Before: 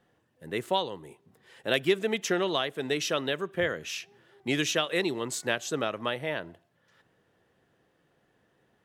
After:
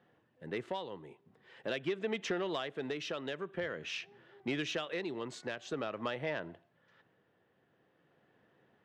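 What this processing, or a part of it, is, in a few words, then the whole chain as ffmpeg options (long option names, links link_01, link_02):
AM radio: -af "highpass=100,lowpass=3400,acompressor=threshold=-30dB:ratio=5,asoftclip=type=tanh:threshold=-23.5dB,tremolo=f=0.47:d=0.36"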